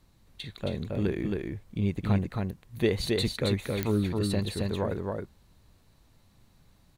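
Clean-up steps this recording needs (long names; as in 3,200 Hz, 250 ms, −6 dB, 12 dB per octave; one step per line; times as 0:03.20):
click removal
echo removal 270 ms −3 dB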